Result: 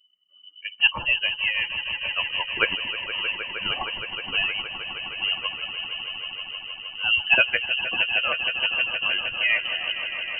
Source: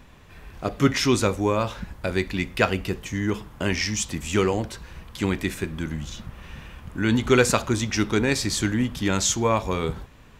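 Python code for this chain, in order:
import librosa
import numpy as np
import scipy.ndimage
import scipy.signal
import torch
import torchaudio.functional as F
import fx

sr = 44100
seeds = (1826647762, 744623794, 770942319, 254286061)

y = fx.bin_expand(x, sr, power=2.0)
y = fx.echo_swell(y, sr, ms=156, loudest=5, wet_db=-13.0)
y = fx.freq_invert(y, sr, carrier_hz=3000)
y = y * 10.0 ** (2.0 / 20.0)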